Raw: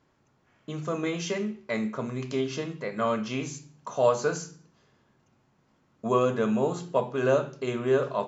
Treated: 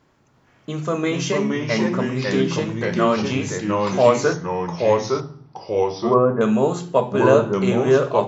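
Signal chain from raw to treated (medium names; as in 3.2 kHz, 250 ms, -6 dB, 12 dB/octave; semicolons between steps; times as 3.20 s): 4.33–6.41 s: low-pass 1.4 kHz 24 dB/octave; ever faster or slower copies 341 ms, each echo -2 st, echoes 2; trim +7.5 dB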